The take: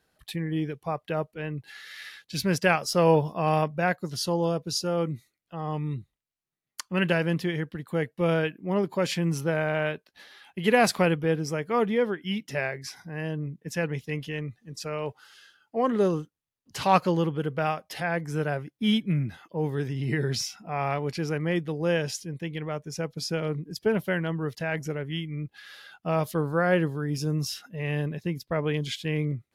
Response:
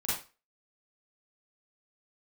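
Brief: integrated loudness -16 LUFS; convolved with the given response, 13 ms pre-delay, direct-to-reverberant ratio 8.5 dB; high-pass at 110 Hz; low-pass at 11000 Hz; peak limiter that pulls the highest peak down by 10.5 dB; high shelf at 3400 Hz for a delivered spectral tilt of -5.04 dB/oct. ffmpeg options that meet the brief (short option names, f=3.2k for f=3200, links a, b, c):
-filter_complex "[0:a]highpass=110,lowpass=11k,highshelf=f=3.4k:g=4,alimiter=limit=-16.5dB:level=0:latency=1,asplit=2[a][b];[1:a]atrim=start_sample=2205,adelay=13[c];[b][c]afir=irnorm=-1:irlink=0,volume=-14dB[d];[a][d]amix=inputs=2:normalize=0,volume=13dB"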